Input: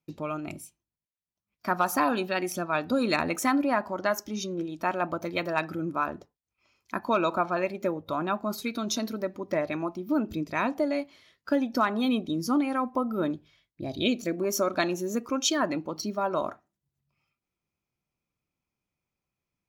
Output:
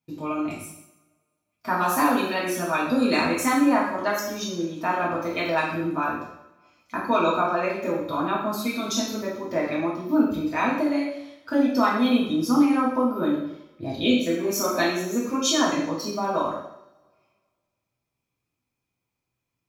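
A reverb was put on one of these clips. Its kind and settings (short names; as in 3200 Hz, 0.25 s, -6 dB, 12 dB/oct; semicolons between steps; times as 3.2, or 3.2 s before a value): two-slope reverb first 0.72 s, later 1.9 s, from -24 dB, DRR -6.5 dB; gain -3 dB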